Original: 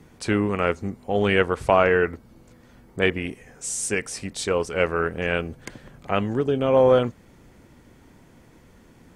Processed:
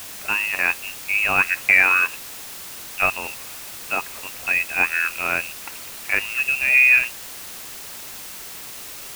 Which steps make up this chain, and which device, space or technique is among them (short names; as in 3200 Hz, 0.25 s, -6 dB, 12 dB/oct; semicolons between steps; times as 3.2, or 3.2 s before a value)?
scrambled radio voice (BPF 360–2600 Hz; inverted band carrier 3000 Hz; white noise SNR 13 dB); gain +3 dB